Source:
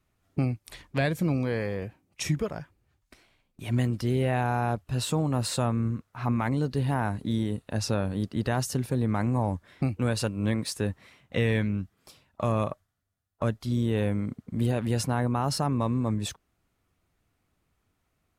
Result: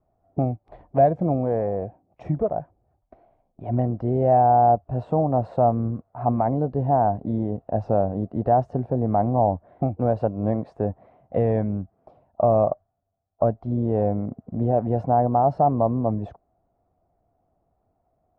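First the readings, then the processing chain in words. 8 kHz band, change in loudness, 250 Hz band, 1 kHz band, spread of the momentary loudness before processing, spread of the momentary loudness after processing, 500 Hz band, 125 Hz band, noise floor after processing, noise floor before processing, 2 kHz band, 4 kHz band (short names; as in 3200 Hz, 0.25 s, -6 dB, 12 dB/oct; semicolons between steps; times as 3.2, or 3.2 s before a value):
under -35 dB, +5.5 dB, +2.5 dB, +12.0 dB, 8 LU, 10 LU, +10.0 dB, +2.0 dB, -72 dBFS, -76 dBFS, under -10 dB, under -25 dB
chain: synth low-pass 700 Hz, resonance Q 6; gain +1.5 dB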